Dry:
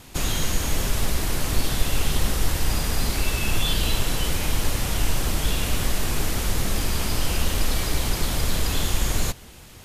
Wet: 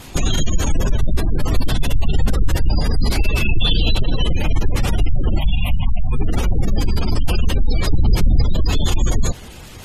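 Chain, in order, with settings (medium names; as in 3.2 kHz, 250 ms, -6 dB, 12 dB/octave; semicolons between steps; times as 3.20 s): 5.39–6.13 s: static phaser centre 1.5 kHz, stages 6; 7.89–8.42 s: bass shelf 150 Hz +7 dB; sine folder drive 5 dB, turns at -6 dBFS; spectral gate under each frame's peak -25 dB strong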